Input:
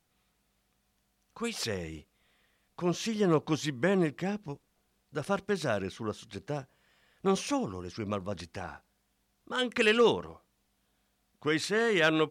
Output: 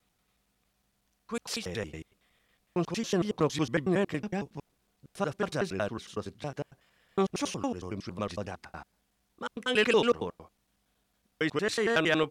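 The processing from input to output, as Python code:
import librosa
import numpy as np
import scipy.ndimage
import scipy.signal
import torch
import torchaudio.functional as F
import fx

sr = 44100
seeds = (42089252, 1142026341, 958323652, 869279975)

y = fx.block_reorder(x, sr, ms=92.0, group=2)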